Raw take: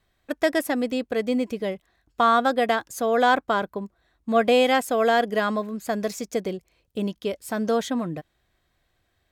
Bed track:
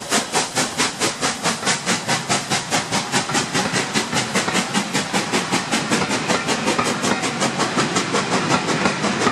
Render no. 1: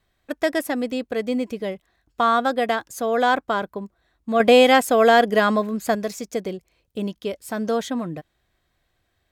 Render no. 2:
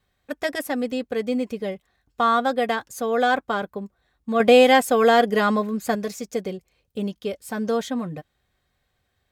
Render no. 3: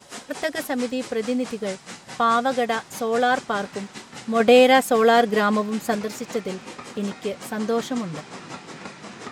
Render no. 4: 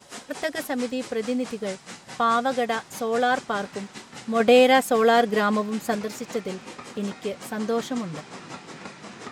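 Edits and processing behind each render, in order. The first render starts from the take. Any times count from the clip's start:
0:04.40–0:05.95: clip gain +5.5 dB
notch comb filter 330 Hz
mix in bed track −19 dB
level −2 dB

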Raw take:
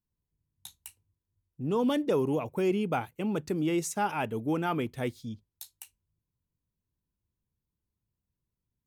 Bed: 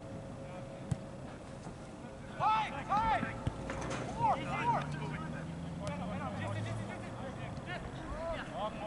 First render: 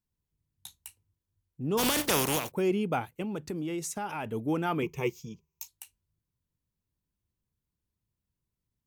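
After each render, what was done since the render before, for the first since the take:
0:01.77–0:02.50: compressing power law on the bin magnitudes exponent 0.36
0:03.22–0:04.26: downward compressor 4 to 1, threshold −31 dBFS
0:04.82–0:05.68: EQ curve with evenly spaced ripples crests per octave 0.76, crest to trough 17 dB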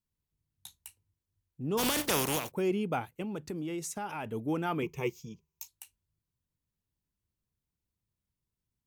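level −2.5 dB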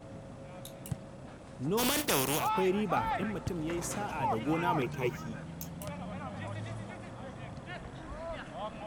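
mix in bed −1.5 dB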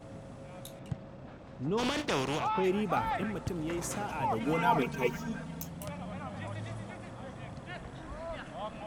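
0:00.79–0:02.64: high-frequency loss of the air 120 metres
0:04.40–0:05.62: comb filter 4.4 ms, depth 94%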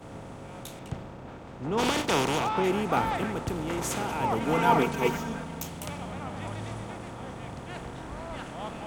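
compressor on every frequency bin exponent 0.6
multiband upward and downward expander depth 70%

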